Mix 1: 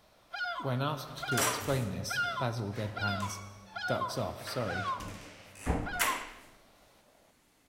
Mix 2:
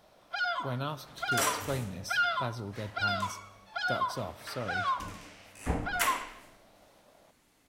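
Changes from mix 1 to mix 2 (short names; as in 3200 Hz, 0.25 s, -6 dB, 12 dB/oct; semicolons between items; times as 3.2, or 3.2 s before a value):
speech: send -9.5 dB; first sound +4.5 dB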